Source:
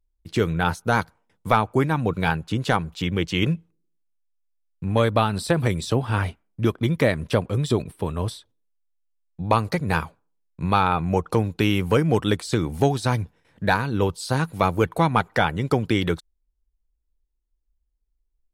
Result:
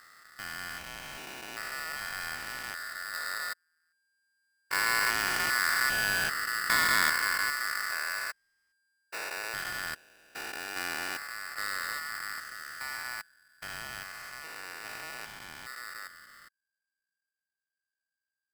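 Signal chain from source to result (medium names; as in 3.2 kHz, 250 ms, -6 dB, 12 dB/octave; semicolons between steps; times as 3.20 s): spectrogram pixelated in time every 400 ms; Doppler pass-by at 6.54 s, 7 m/s, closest 8.7 m; polarity switched at an audio rate 1.6 kHz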